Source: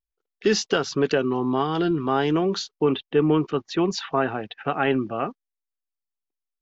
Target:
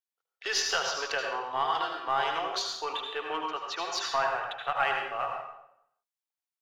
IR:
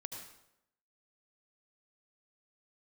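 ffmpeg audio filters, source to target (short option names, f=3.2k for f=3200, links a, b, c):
-filter_complex "[0:a]highpass=f=680:w=0.5412,highpass=f=680:w=1.3066,asplit=2[a][b];[b]aeval=exprs='clip(val(0),-1,0.0266)':c=same,volume=-9.5dB[c];[a][c]amix=inputs=2:normalize=0[d];[1:a]atrim=start_sample=2205[e];[d][e]afir=irnorm=-1:irlink=0"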